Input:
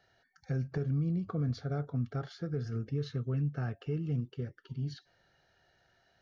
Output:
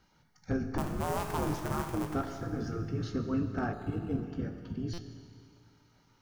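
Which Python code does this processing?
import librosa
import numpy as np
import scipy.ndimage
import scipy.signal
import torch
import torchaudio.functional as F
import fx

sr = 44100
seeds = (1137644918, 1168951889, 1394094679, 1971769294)

y = fx.cycle_switch(x, sr, every=2, mode='inverted', at=(0.78, 2.14))
y = fx.spec_gate(y, sr, threshold_db=-10, keep='weak')
y = fx.graphic_eq_10(y, sr, hz=(125, 250, 500, 1000, 2000, 4000), db=(6, -4, -8, 3, -5, -7))
y = fx.rev_schroeder(y, sr, rt60_s=2.3, comb_ms=26, drr_db=6.5)
y = np.clip(y, -10.0 ** (-37.0 / 20.0), 10.0 ** (-37.0 / 20.0))
y = fx.low_shelf(y, sr, hz=490.0, db=9.0)
y = fx.doubler(y, sr, ms=19.0, db=-11.5)
y = fx.buffer_glitch(y, sr, at_s=(4.93,), block=256, repeats=8)
y = fx.resample_linear(y, sr, factor=8, at=(3.73, 4.23))
y = F.gain(torch.from_numpy(y), 8.5).numpy()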